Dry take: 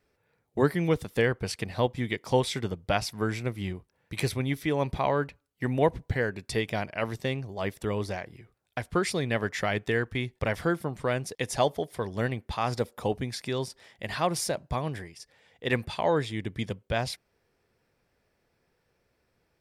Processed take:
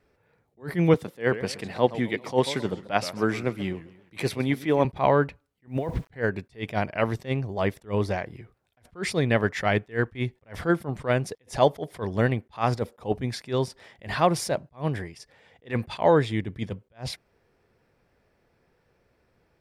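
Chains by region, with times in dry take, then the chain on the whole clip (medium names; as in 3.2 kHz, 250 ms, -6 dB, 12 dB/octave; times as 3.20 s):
0.94–4.85 s: high-pass 170 Hz + modulated delay 132 ms, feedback 40%, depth 217 cents, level -17 dB
5.67–6.13 s: compressor with a negative ratio -31 dBFS + word length cut 10-bit, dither none + tape noise reduction on one side only encoder only
whole clip: treble shelf 3.3 kHz -9 dB; attacks held to a fixed rise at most 280 dB/s; trim +6.5 dB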